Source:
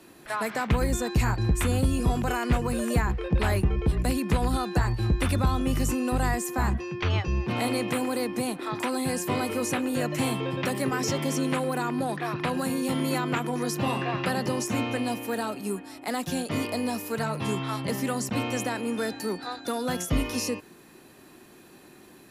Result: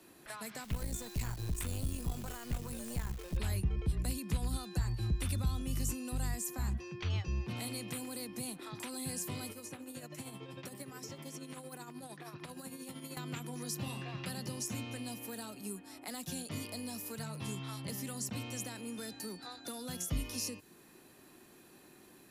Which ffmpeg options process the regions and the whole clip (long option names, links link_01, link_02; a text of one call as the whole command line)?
ffmpeg -i in.wav -filter_complex "[0:a]asettb=1/sr,asplit=3[link_01][link_02][link_03];[link_01]atrim=end=0.644[link_04];[link_02]atrim=start=0.64:end=3.37,asetpts=PTS-STARTPTS,afade=type=in:duration=0.004:curve=qsin,afade=type=out:start_time=2.726:duration=0.004:curve=qsin,aeval=exprs='(tanh(8.91*val(0)+0.75)-tanh(0.75))/8.91':channel_layout=same,acrusher=bits=8:dc=4:mix=0:aa=0.000001[link_05];[link_03]atrim=start=3.366[link_06];[link_04][link_05]acrossfade=duration=0.004:curve1=hsin:curve2=qsin[link_07];[link_07][link_06]acrossfade=duration=0.004:curve1=qsin:curve2=hsin,asettb=1/sr,asplit=3[link_08][link_09][link_10];[link_08]atrim=end=9.514[link_11];[link_09]atrim=start=9.51:end=13.17,asetpts=PTS-STARTPTS,afade=type=in:duration=0.004:curve=qsin,afade=type=out:start_time=3.656:duration=0.004:curve=qsin,acrossover=split=1500|4200[link_12][link_13][link_14];[link_12]acompressor=threshold=-34dB:ratio=4[link_15];[link_13]acompressor=threshold=-48dB:ratio=4[link_16];[link_14]acompressor=threshold=-43dB:ratio=4[link_17];[link_15][link_16][link_17]amix=inputs=3:normalize=0,tremolo=f=13:d=0.54[link_18];[link_10]atrim=start=13.166[link_19];[link_11][link_18]acrossfade=duration=0.004:curve1=hsin:curve2=qsin[link_20];[link_20][link_19]acrossfade=duration=0.004:curve1=qsin:curve2=hsin,highshelf=frequency=6000:gain=5,acrossover=split=200|3000[link_21][link_22][link_23];[link_22]acompressor=threshold=-38dB:ratio=6[link_24];[link_21][link_24][link_23]amix=inputs=3:normalize=0,volume=-8dB" out.wav